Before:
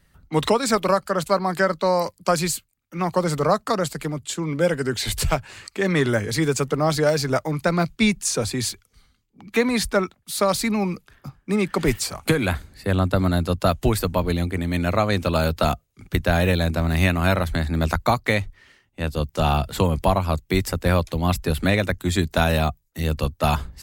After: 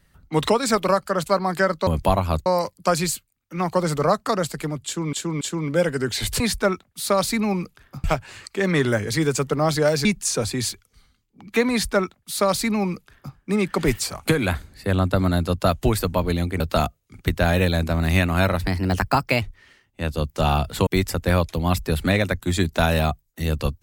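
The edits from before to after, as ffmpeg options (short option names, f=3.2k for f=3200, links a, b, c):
-filter_complex "[0:a]asplit=12[a][b][c][d][e][f][g][h][i][j][k][l];[a]atrim=end=1.872[m];[b]atrim=start=19.858:end=20.452[n];[c]atrim=start=1.868:end=4.542[o];[d]atrim=start=4.258:end=4.542[p];[e]atrim=start=4.258:end=5.252[q];[f]atrim=start=9.708:end=11.352[r];[g]atrim=start=5.248:end=7.262[s];[h]atrim=start=8.048:end=14.602[t];[i]atrim=start=15.468:end=17.474[u];[j]atrim=start=17.47:end=18.41,asetpts=PTS-STARTPTS,asetrate=50715,aresample=44100[v];[k]atrim=start=18.406:end=19.862[w];[l]atrim=start=20.448[x];[m][n]acrossfade=d=0.004:c1=hsin:c2=hsin[y];[y][o]acrossfade=d=0.004:c1=hsin:c2=hsin[z];[z][p]acrossfade=d=0.004:c1=hsin:c2=hsin[aa];[aa][q]acrossfade=d=0.004:c1=hsin:c2=hsin[ab];[ab][r]acrossfade=d=0.004:c1=hsin:c2=hsin[ac];[ac][s]acrossfade=d=0.004:c1=hsin:c2=hsin[ad];[ad][t]acrossfade=d=0.004:c1=hsin:c2=hsin[ae];[ae][u]acrossfade=d=0.004:c1=hsin:c2=hsin[af];[af][v]acrossfade=d=0.004:c1=hsin:c2=hsin[ag];[ag][w]acrossfade=d=0.004:c1=hsin:c2=hsin[ah];[ah][x]acrossfade=d=0.004:c1=hsin:c2=hsin"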